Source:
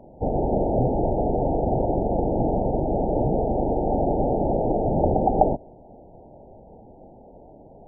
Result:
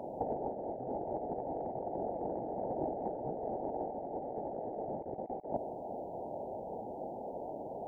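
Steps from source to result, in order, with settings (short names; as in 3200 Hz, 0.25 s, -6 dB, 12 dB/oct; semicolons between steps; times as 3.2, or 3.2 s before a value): HPF 610 Hz 6 dB/oct; negative-ratio compressor -35 dBFS, ratio -0.5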